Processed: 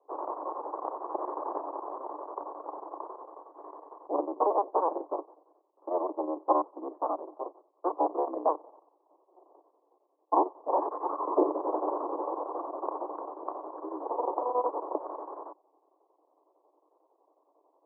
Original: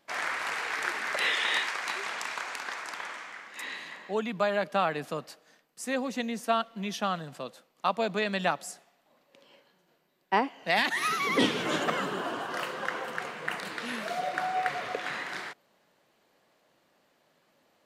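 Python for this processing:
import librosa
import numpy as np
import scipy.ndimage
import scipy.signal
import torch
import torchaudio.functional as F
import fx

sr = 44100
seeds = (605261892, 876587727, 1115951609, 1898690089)

y = fx.cycle_switch(x, sr, every=3, mode='inverted')
y = fx.chopper(y, sr, hz=11.0, depth_pct=60, duty_pct=75)
y = scipy.signal.sosfilt(scipy.signal.cheby1(5, 1.0, [300.0, 1100.0], 'bandpass', fs=sr, output='sos'), y)
y = y * librosa.db_to_amplitude(4.0)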